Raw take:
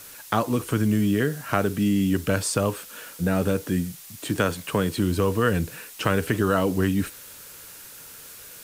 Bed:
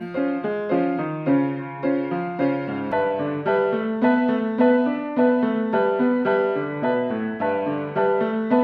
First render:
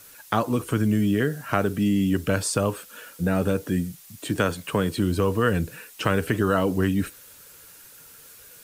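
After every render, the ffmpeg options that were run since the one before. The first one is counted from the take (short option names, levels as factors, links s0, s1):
-af "afftdn=nr=6:nf=-44"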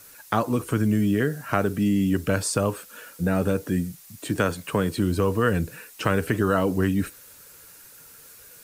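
-af "equalizer=f=3200:w=3:g=-3.5"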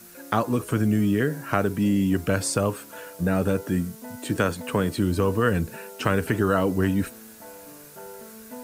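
-filter_complex "[1:a]volume=0.0794[s0];[0:a][s0]amix=inputs=2:normalize=0"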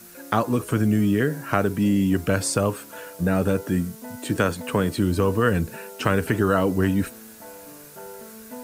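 -af "volume=1.19"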